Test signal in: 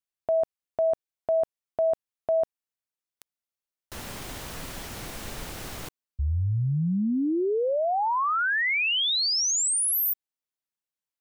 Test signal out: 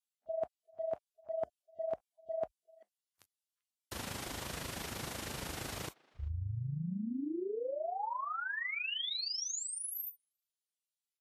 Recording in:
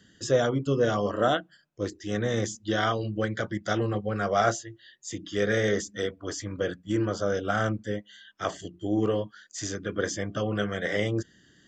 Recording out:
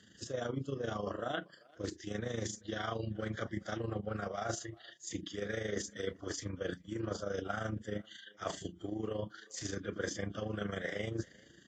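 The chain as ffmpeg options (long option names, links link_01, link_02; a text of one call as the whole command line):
ffmpeg -i in.wav -filter_complex "[0:a]acrossover=split=4500[link_01][link_02];[link_02]acompressor=threshold=-40dB:ratio=4:attack=1:release=60[link_03];[link_01][link_03]amix=inputs=2:normalize=0,highpass=frequency=53:width=0.5412,highpass=frequency=53:width=1.3066,areverse,acompressor=threshold=-36dB:ratio=8:attack=64:release=99:knee=6:detection=rms,areverse,tremolo=f=26:d=0.71,asplit=2[link_04][link_05];[link_05]adelay=390,highpass=300,lowpass=3400,asoftclip=type=hard:threshold=-31.5dB,volume=-24dB[link_06];[link_04][link_06]amix=inputs=2:normalize=0,volume=1dB" -ar 44100 -c:a libvorbis -b:a 32k out.ogg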